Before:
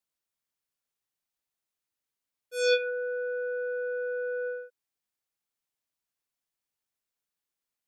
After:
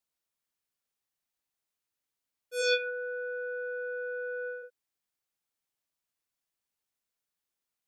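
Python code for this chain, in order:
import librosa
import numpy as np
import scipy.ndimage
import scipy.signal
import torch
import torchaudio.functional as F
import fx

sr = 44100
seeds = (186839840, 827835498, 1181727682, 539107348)

y = fx.highpass(x, sr, hz=590.0, slope=12, at=(2.61, 4.62), fade=0.02)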